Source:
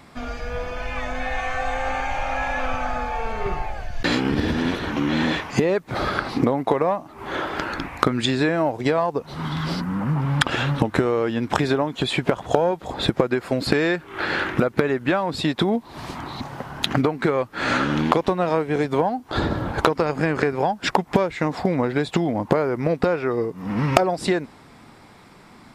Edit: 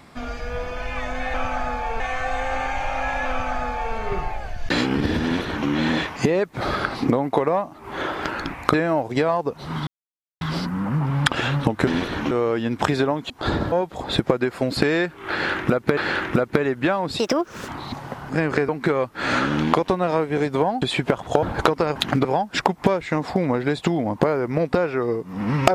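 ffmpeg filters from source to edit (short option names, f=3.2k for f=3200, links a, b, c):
-filter_complex "[0:a]asplit=18[a][b][c][d][e][f][g][h][i][j][k][l][m][n][o][p][q][r];[a]atrim=end=1.342[s];[b]atrim=start=2.628:end=3.292[t];[c]atrim=start=1.338:end=8.082[u];[d]atrim=start=8.428:end=9.56,asetpts=PTS-STARTPTS,afade=t=out:st=1.128:d=0.004:c=hsin,apad=pad_dur=0.54[v];[e]atrim=start=9.56:end=11.022,asetpts=PTS-STARTPTS,afade=t=in:d=0.004:c=hsin[w];[f]atrim=start=4.578:end=5.022[x];[g]atrim=start=11.018:end=12.012[y];[h]atrim=start=19.198:end=19.622[z];[i]atrim=start=12.618:end=14.872[aa];[j]atrim=start=14.208:end=15.434[ab];[k]atrim=start=15.43:end=16.17,asetpts=PTS-STARTPTS,asetrate=65709,aresample=44100,atrim=end_sample=21902,asetpts=PTS-STARTPTS[ac];[l]atrim=start=16.166:end=16.782[ad];[m]atrim=start=20.148:end=20.542[ae];[n]atrim=start=17.068:end=19.202[af];[o]atrim=start=12.008:end=12.622[ag];[p]atrim=start=19.618:end=20.152[ah];[q]atrim=start=16.778:end=17.072[ai];[r]atrim=start=20.538[aj];[s][t]acrossfade=d=0.004:c1=hsin:c2=hsin[ak];[ak][u]acrossfade=d=0.004:c1=hsin:c2=hsin[al];[v][w]concat=n=2:v=0:a=1[am];[al][am]acrossfade=d=0.004:c1=hsin:c2=hsin[an];[an][x]acrossfade=d=0.004:c1=hsin:c2=hsin[ao];[ao][y]acrossfade=d=0.004:c1=hsin:c2=hsin[ap];[ap][z]acrossfade=d=0.004:c1=hsin:c2=hsin[aq];[aq][aa]acrossfade=d=0.004:c1=hsin:c2=hsin[ar];[ar][ab]acrossfade=d=0.004:c1=hsin:c2=hsin[as];[as][ac]acrossfade=d=0.004:c1=hsin:c2=hsin[at];[at][ad]acrossfade=d=0.004:c1=hsin:c2=hsin[au];[au][ae]acrossfade=d=0.004:c1=hsin:c2=hsin[av];[av][af]acrossfade=d=0.004:c1=hsin:c2=hsin[aw];[aw][ag]acrossfade=d=0.004:c1=hsin:c2=hsin[ax];[ax][ah]acrossfade=d=0.004:c1=hsin:c2=hsin[ay];[ay][ai]acrossfade=d=0.004:c1=hsin:c2=hsin[az];[az][aj]acrossfade=d=0.004:c1=hsin:c2=hsin"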